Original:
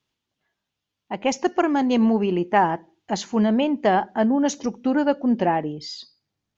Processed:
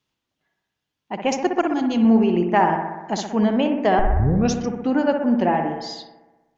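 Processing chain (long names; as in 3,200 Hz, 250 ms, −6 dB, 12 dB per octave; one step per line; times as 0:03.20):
0:01.61–0:02.05: flat-topped bell 890 Hz −8 dB 3 octaves
0:03.99: tape start 0.55 s
bucket-brigade delay 62 ms, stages 1,024, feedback 69%, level −6 dB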